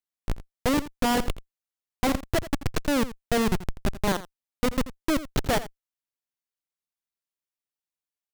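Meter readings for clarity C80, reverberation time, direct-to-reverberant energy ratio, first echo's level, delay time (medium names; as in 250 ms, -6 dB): no reverb, no reverb, no reverb, -15.0 dB, 84 ms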